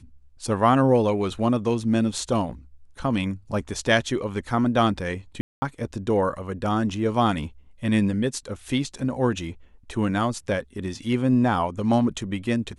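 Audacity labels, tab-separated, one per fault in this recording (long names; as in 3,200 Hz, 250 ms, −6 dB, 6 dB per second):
5.410000	5.620000	drop-out 210 ms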